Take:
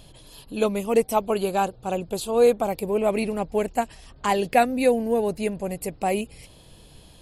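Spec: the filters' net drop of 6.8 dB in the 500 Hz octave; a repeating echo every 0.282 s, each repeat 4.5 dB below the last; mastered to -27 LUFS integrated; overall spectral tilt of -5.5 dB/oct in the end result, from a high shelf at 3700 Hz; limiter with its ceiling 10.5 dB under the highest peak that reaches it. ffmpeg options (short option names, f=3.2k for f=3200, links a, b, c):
-af "equalizer=f=500:t=o:g=-8,highshelf=f=3.7k:g=-5.5,alimiter=limit=-19.5dB:level=0:latency=1,aecho=1:1:282|564|846|1128|1410|1692|1974|2256|2538:0.596|0.357|0.214|0.129|0.0772|0.0463|0.0278|0.0167|0.01,volume=2.5dB"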